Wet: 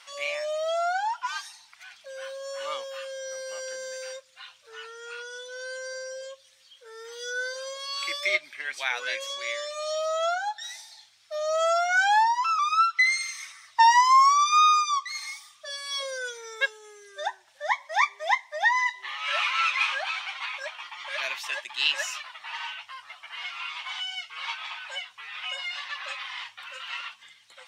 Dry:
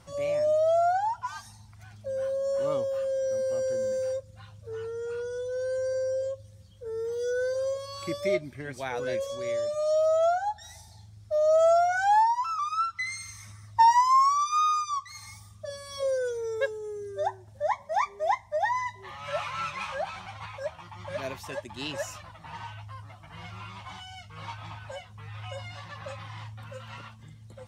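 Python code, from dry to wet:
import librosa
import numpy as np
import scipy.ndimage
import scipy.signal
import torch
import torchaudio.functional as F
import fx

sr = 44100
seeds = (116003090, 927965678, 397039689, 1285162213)

y = scipy.signal.sosfilt(scipy.signal.butter(2, 1000.0, 'highpass', fs=sr, output='sos'), x)
y = fx.peak_eq(y, sr, hz=2800.0, db=14.0, octaves=2.3)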